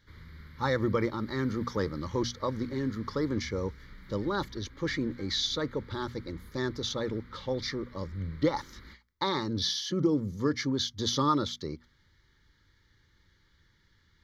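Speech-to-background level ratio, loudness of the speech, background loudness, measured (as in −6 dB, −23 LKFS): 20.0 dB, −31.5 LKFS, −51.5 LKFS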